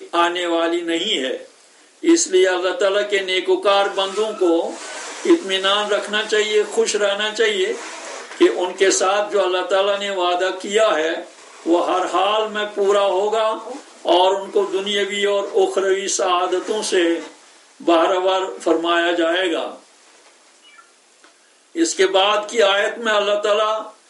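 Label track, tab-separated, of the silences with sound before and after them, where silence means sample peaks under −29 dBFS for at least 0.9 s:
19.740000	21.750000	silence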